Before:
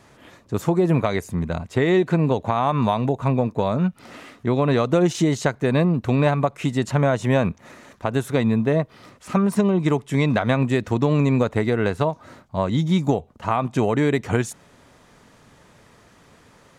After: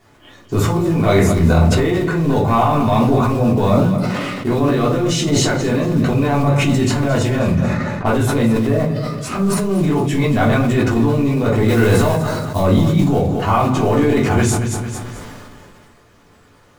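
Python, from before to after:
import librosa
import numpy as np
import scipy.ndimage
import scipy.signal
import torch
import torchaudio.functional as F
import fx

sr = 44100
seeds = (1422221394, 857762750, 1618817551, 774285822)

p1 = 10.0 ** (-17.5 / 20.0) * np.tanh(x / 10.0 ** (-17.5 / 20.0))
p2 = x + (p1 * 10.0 ** (-4.0 / 20.0))
p3 = fx.noise_reduce_blind(p2, sr, reduce_db=11)
p4 = fx.quant_companded(p3, sr, bits=6)
p5 = fx.env_lowpass(p4, sr, base_hz=2200.0, full_db=-19.5, at=(7.39, 8.07))
p6 = fx.high_shelf(p5, sr, hz=3600.0, db=10.5, at=(11.68, 12.62))
p7 = fx.over_compress(p6, sr, threshold_db=-20.0, ratio=-1.0)
p8 = fx.high_shelf(p7, sr, hz=8400.0, db=-4.5)
p9 = p8 + fx.echo_feedback(p8, sr, ms=222, feedback_pct=30, wet_db=-12.0, dry=0)
p10 = fx.room_shoebox(p9, sr, seeds[0], volume_m3=260.0, walls='furnished', distance_m=3.3)
p11 = fx.sustainer(p10, sr, db_per_s=23.0)
y = p11 * 10.0 ** (-3.0 / 20.0)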